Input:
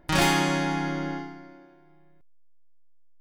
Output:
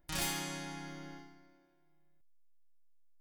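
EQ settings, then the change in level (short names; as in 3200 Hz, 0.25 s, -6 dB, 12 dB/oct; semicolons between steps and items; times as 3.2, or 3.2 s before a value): pre-emphasis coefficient 0.8; low shelf 89 Hz +10 dB; -5.5 dB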